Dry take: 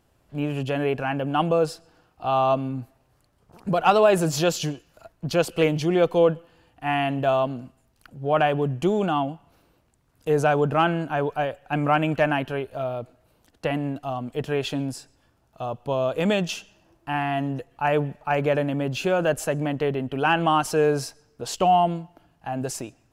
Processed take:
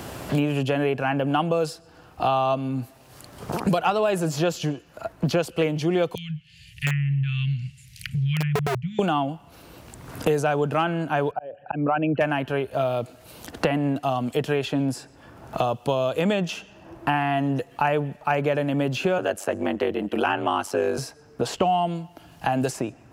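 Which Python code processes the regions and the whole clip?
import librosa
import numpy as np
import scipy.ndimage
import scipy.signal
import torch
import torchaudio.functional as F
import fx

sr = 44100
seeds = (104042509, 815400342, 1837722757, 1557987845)

y = fx.chain(x, sr, fx.cheby1_bandstop(low_hz=150.0, high_hz=2100.0, order=4),
    fx.env_lowpass_down(base_hz=820.0, full_db=-27.0),
    fx.overflow_wrap(gain_db=26.5), at=(6.15, 8.99))
y = fx.chain(y, sr, fx.envelope_sharpen(power=2.0),
    fx.cheby1_bandpass(low_hz=130.0, high_hz=3900.0, order=2),
    fx.auto_swell(attack_ms=452.0), at=(11.31, 12.21))
y = fx.chain(y, sr, fx.highpass(hz=220.0, slope=24),
    fx.ring_mod(carrier_hz=48.0), at=(19.18, 20.98))
y = scipy.signal.sosfilt(scipy.signal.butter(2, 49.0, 'highpass', fs=sr, output='sos'), y)
y = fx.band_squash(y, sr, depth_pct=100)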